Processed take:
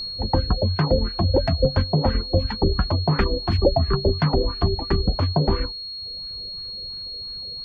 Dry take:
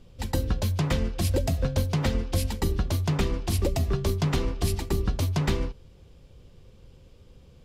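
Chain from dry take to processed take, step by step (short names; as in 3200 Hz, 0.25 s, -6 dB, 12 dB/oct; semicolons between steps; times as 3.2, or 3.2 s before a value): LFO low-pass sine 2.9 Hz 530–1700 Hz; whine 4300 Hz -33 dBFS; reverb removal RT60 0.83 s; gain +5.5 dB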